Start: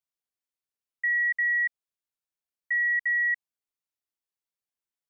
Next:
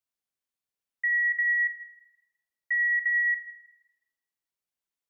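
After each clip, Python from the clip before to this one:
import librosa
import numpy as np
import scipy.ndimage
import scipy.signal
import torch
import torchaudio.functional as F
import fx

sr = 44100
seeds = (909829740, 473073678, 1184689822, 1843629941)

y = x + 10.0 ** (-24.0 / 20.0) * np.pad(x, (int(190 * sr / 1000.0), 0))[:len(x)]
y = fx.rev_spring(y, sr, rt60_s=1.0, pass_ms=(38, 49), chirp_ms=60, drr_db=7.5)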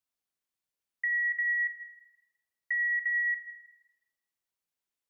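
y = fx.dynamic_eq(x, sr, hz=1900.0, q=5.7, threshold_db=-34.0, ratio=4.0, max_db=-4)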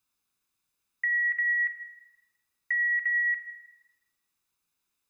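y = x + 0.47 * np.pad(x, (int(0.8 * sr / 1000.0), 0))[:len(x)]
y = y * librosa.db_to_amplitude(8.0)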